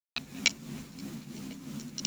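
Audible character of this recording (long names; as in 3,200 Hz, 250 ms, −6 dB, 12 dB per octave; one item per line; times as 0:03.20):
a quantiser's noise floor 8 bits, dither none
tremolo triangle 3 Hz, depth 65%
a shimmering, thickened sound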